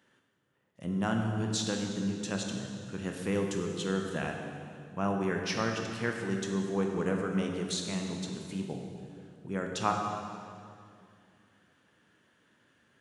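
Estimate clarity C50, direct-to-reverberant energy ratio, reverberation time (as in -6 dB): 3.0 dB, 1.5 dB, 2.4 s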